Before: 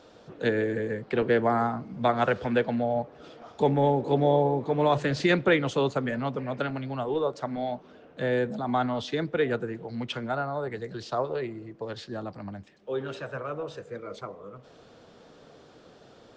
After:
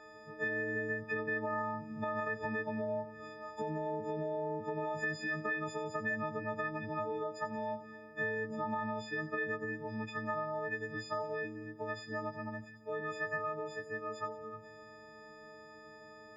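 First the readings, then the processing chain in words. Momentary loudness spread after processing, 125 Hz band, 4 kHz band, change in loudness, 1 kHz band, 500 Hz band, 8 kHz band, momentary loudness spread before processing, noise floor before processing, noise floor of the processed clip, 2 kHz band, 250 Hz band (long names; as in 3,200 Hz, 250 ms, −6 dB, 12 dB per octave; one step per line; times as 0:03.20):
13 LU, −13.5 dB, −15.5 dB, −10.0 dB, −9.0 dB, −11.5 dB, can't be measured, 15 LU, −54 dBFS, −54 dBFS, −2.5 dB, −12.0 dB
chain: every partial snapped to a pitch grid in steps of 6 semitones
parametric band 4,000 Hz +3.5 dB 2.4 octaves
brickwall limiter −16.5 dBFS, peak gain reduction 11.5 dB
downward compressor 5 to 1, threshold −29 dBFS, peak gain reduction 7.5 dB
high shelf with overshoot 2,400 Hz −9.5 dB, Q 3
echo with a time of its own for lows and highs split 390 Hz, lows 163 ms, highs 89 ms, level −14 dB
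every ending faded ahead of time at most 510 dB per second
level −6.5 dB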